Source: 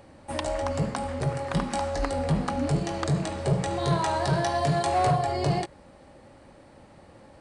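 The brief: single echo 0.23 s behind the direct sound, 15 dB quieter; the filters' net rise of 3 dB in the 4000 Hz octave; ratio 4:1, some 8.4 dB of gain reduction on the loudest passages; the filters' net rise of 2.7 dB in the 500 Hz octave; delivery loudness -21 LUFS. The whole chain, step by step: bell 500 Hz +3.5 dB; bell 4000 Hz +3.5 dB; compressor 4:1, threshold -29 dBFS; echo 0.23 s -15 dB; gain +11 dB

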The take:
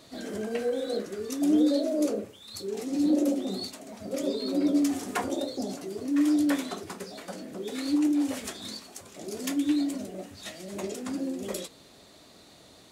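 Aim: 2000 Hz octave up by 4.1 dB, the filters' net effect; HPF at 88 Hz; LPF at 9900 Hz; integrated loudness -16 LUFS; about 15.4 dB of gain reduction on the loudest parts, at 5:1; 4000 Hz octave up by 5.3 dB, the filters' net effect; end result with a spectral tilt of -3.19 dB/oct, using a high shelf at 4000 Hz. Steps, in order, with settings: HPF 88 Hz; LPF 9900 Hz; bell 2000 Hz +3.5 dB; high shelf 4000 Hz +4 dB; bell 4000 Hz +3 dB; compressor 5:1, threshold -38 dBFS; gain +24.5 dB

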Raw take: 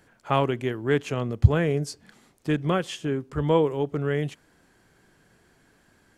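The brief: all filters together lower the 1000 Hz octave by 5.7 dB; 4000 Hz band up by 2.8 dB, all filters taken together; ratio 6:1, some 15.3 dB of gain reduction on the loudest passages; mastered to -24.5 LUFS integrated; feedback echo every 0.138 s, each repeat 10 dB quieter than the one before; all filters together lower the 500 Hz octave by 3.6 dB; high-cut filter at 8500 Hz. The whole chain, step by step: LPF 8500 Hz; bell 500 Hz -3 dB; bell 1000 Hz -6.5 dB; bell 4000 Hz +4.5 dB; compressor 6:1, threshold -27 dBFS; feedback echo 0.138 s, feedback 32%, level -10 dB; gain +8.5 dB

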